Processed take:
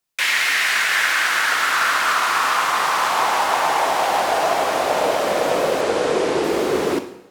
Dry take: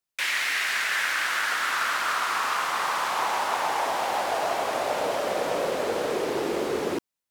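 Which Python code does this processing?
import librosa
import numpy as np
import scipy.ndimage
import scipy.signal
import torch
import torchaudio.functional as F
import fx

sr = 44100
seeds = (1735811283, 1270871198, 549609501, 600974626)

y = fx.lowpass(x, sr, hz=10000.0, slope=24, at=(5.81, 6.44))
y = fx.rev_double_slope(y, sr, seeds[0], early_s=0.71, late_s=1.8, knee_db=-17, drr_db=8.0)
y = y * 10.0 ** (7.0 / 20.0)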